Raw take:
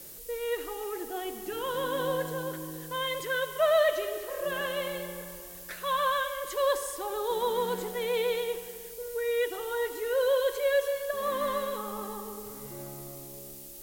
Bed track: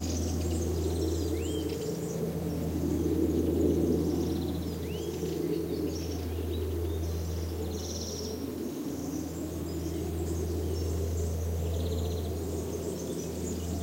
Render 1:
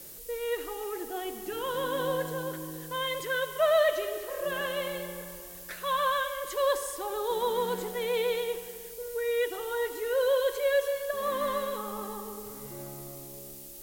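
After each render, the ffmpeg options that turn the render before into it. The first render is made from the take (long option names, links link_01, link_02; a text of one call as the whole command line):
ffmpeg -i in.wav -af anull out.wav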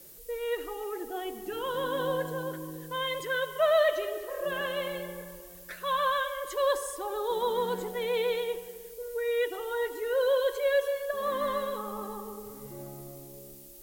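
ffmpeg -i in.wav -af "afftdn=noise_reduction=6:noise_floor=-45" out.wav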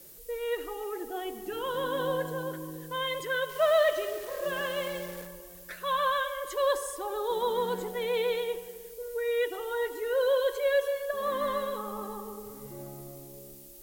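ffmpeg -i in.wav -filter_complex "[0:a]asettb=1/sr,asplit=3[link_01][link_02][link_03];[link_01]atrim=end=3.494[link_04];[link_02]atrim=start=3.49:end=5.27,asetpts=PTS-STARTPTS,afade=type=in:duration=0.004:curve=qsin,afade=type=out:start_time=1.776:duration=0.004:curve=qsin,acrusher=bits=8:dc=4:mix=0:aa=0.000001[link_05];[link_03]atrim=start=5.266[link_06];[link_04][link_05]acrossfade=duration=0.004:curve1=hsin:curve2=qsin[link_07];[link_07][link_06]acrossfade=duration=0.004:curve1=qsin:curve2=hsin" out.wav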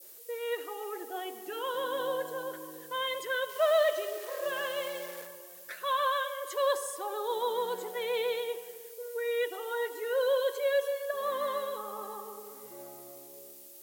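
ffmpeg -i in.wav -af "highpass=440,adynamicequalizer=threshold=0.01:dfrequency=1700:dqfactor=0.78:tfrequency=1700:tqfactor=0.78:attack=5:release=100:ratio=0.375:range=2.5:mode=cutabove:tftype=bell" out.wav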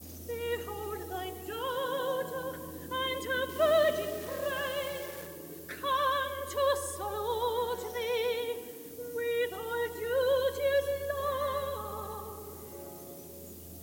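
ffmpeg -i in.wav -i bed.wav -filter_complex "[1:a]volume=-16dB[link_01];[0:a][link_01]amix=inputs=2:normalize=0" out.wav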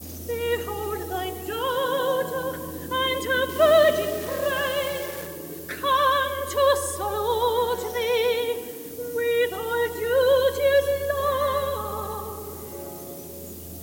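ffmpeg -i in.wav -af "volume=8.5dB" out.wav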